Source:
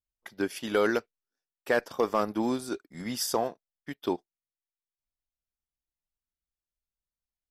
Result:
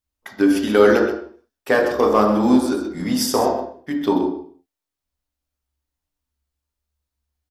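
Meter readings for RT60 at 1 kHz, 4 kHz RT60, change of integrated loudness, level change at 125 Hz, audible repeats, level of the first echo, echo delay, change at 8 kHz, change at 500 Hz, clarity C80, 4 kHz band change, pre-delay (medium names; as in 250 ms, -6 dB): 0.55 s, 0.45 s, +12.0 dB, +12.5 dB, 1, -10.0 dB, 128 ms, +8.0 dB, +12.0 dB, 6.0 dB, +8.5 dB, 3 ms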